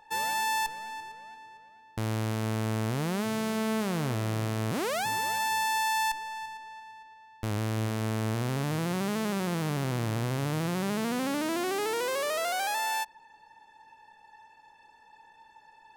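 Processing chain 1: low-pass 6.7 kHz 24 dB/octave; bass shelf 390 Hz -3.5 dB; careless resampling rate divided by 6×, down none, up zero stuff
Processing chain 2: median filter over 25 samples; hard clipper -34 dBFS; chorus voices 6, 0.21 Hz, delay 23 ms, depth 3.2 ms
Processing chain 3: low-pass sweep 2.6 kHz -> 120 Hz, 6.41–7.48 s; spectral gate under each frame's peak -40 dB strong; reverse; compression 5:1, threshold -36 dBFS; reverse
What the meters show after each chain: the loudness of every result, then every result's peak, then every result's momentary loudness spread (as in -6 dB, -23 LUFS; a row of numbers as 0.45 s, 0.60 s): -21.0 LUFS, -40.0 LUFS, -38.5 LUFS; -5.0 dBFS, -29.5 dBFS, -23.0 dBFS; 12 LU, 13 LU, 11 LU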